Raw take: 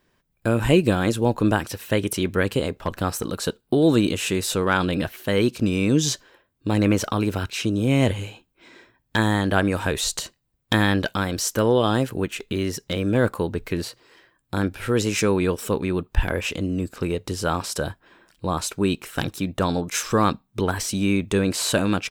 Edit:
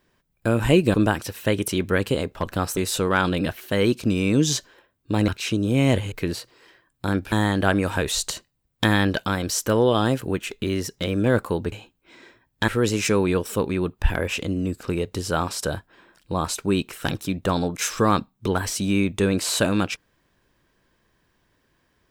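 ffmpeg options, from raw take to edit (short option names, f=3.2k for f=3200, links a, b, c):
-filter_complex "[0:a]asplit=8[a][b][c][d][e][f][g][h];[a]atrim=end=0.942[i];[b]atrim=start=1.388:end=3.222[j];[c]atrim=start=4.328:end=6.842[k];[d]atrim=start=7.408:end=8.252[l];[e]atrim=start=13.608:end=14.812[m];[f]atrim=start=9.208:end=13.612[n];[g]atrim=start=8.248:end=9.212[o];[h]atrim=start=14.808[p];[i][j]acrossfade=d=0.004:c1=hsin:c2=hsin[q];[q][k]acrossfade=d=0.004:c1=hsin:c2=hsin[r];[r][l]acrossfade=d=0.004:c1=hsin:c2=hsin[s];[s][m]acrossfade=d=0.004:c1=hsin:c2=hsin[t];[t][n]acrossfade=d=0.004:c1=hsin:c2=hsin[u];[u][o]acrossfade=d=0.004:c1=hsin:c2=hsin[v];[v][p]acrossfade=d=0.004:c1=hsin:c2=hsin"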